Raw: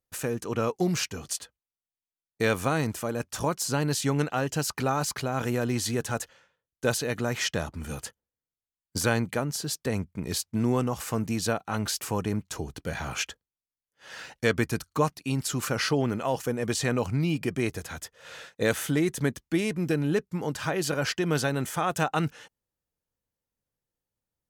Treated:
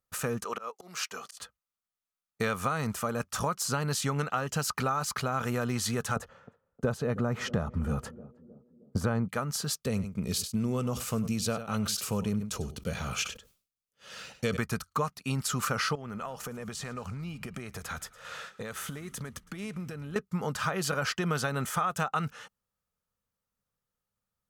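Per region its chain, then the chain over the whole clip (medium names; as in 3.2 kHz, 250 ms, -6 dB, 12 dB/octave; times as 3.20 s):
0.44–1.37 s: high-pass 450 Hz + slow attack 345 ms
6.16–9.28 s: tilt shelf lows +9.5 dB, about 1.3 kHz + band-passed feedback delay 313 ms, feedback 60%, band-pass 300 Hz, level -19.5 dB
9.80–14.57 s: high-order bell 1.2 kHz -8.5 dB + delay 97 ms -16.5 dB + decay stretcher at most 140 dB/s
15.95–20.16 s: compression 16:1, threshold -34 dBFS + frequency-shifting echo 110 ms, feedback 59%, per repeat -56 Hz, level -21 dB
whole clip: graphic EQ with 31 bands 200 Hz +5 dB, 315 Hz -11 dB, 1.25 kHz +11 dB; compression, threshold -26 dBFS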